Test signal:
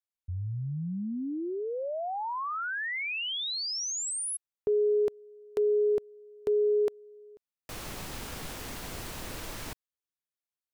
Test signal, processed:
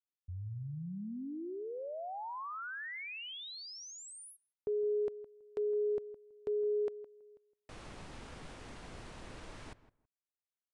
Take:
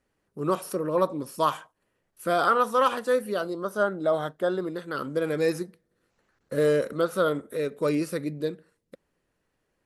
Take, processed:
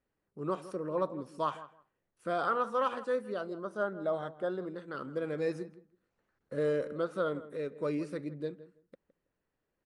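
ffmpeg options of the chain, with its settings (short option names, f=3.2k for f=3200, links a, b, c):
-filter_complex "[0:a]highshelf=f=4.3k:g=-11,asplit=2[a][b];[b]adelay=163,lowpass=f=1.6k:p=1,volume=-15dB,asplit=2[c][d];[d]adelay=163,lowpass=f=1.6k:p=1,volume=0.18[e];[c][e]amix=inputs=2:normalize=0[f];[a][f]amix=inputs=2:normalize=0,aresample=22050,aresample=44100,volume=-8dB"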